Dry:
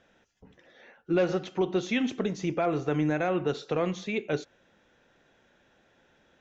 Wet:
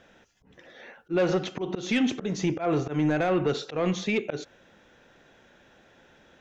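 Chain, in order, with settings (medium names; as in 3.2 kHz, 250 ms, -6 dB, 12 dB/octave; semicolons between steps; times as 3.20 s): slow attack 164 ms; saturation -20.5 dBFS, distortion -19 dB; peak limiter -24.5 dBFS, peak gain reduction 3 dB; trim +7 dB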